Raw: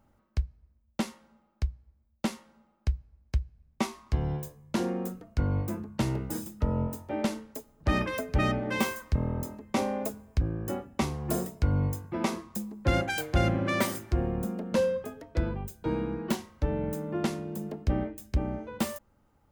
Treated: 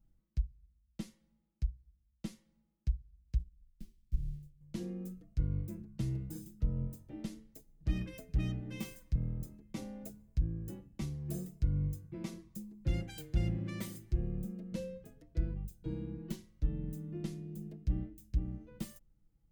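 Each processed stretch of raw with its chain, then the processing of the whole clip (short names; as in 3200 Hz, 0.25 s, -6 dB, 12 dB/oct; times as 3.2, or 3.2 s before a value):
3.39–4.61 half-waves squared off + passive tone stack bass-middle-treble 10-0-1
whole clip: passive tone stack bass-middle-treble 10-0-1; comb 6.1 ms; gain +6 dB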